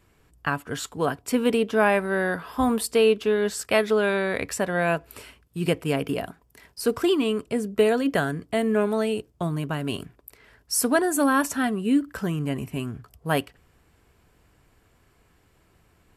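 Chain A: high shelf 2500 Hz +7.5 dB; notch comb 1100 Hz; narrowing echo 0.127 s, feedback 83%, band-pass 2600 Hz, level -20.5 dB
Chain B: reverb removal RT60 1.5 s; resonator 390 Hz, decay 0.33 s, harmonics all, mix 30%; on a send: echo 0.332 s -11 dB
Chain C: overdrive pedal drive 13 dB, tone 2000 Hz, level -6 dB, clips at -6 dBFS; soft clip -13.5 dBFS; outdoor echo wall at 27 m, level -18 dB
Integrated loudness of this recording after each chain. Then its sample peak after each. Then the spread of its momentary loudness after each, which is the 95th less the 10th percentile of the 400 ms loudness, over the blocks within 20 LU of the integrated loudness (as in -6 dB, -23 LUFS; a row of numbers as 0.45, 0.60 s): -24.0, -28.5, -24.0 LUFS; -6.5, -9.5, -13.5 dBFS; 12, 15, 11 LU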